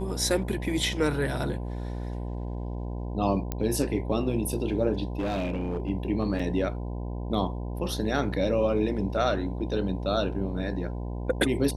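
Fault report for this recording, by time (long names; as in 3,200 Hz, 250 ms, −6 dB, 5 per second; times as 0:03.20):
mains buzz 60 Hz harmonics 17 −33 dBFS
0:03.52: click −15 dBFS
0:05.19–0:05.90: clipping −25 dBFS
0:06.39–0:06.40: drop-out 5.3 ms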